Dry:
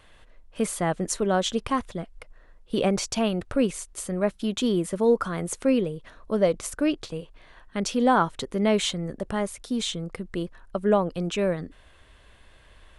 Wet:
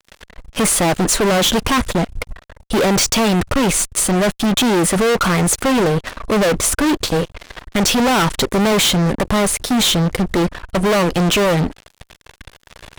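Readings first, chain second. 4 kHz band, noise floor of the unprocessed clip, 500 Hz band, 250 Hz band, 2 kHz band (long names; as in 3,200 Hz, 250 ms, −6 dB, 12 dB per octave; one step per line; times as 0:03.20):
+14.5 dB, −55 dBFS, +7.5 dB, +9.0 dB, +14.0 dB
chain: fuzz pedal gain 39 dB, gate −47 dBFS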